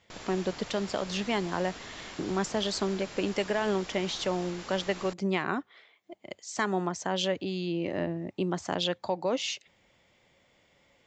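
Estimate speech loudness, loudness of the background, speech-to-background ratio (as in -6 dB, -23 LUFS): -31.5 LUFS, -43.5 LUFS, 12.0 dB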